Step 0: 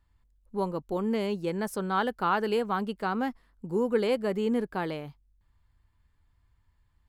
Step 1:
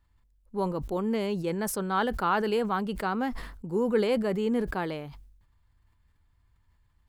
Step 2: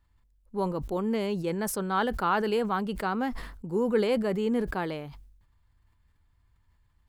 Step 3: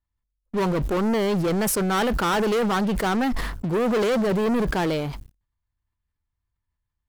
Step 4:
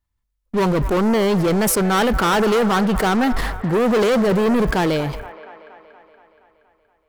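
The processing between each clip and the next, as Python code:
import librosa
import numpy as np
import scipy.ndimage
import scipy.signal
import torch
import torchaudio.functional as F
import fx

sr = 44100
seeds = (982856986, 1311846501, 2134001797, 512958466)

y1 = fx.sustainer(x, sr, db_per_s=60.0)
y2 = y1
y3 = fx.leveller(y2, sr, passes=5)
y3 = y3 * 10.0 ** (-5.0 / 20.0)
y4 = fx.echo_wet_bandpass(y3, sr, ms=236, feedback_pct=64, hz=1100.0, wet_db=-12.0)
y4 = y4 * 10.0 ** (5.0 / 20.0)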